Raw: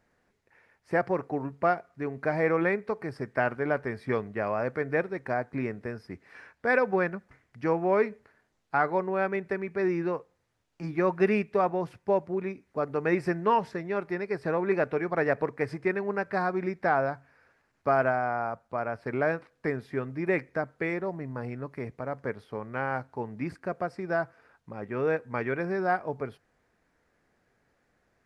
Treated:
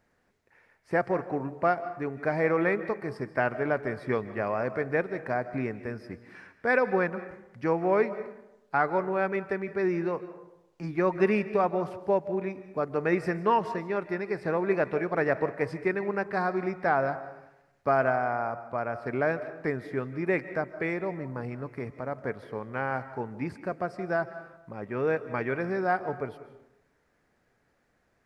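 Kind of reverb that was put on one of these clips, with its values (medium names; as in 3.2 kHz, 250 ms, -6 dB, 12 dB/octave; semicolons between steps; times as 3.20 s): algorithmic reverb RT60 0.9 s, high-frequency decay 0.5×, pre-delay 110 ms, DRR 13 dB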